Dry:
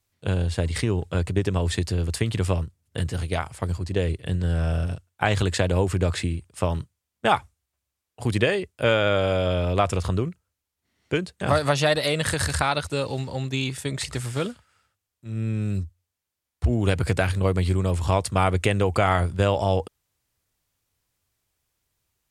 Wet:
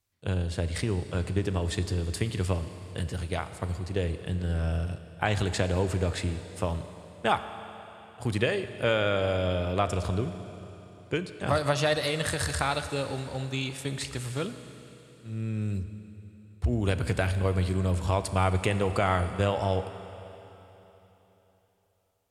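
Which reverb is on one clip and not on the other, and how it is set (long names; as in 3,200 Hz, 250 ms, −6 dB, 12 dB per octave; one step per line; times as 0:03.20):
four-comb reverb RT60 3.6 s, combs from 29 ms, DRR 10 dB
level −5 dB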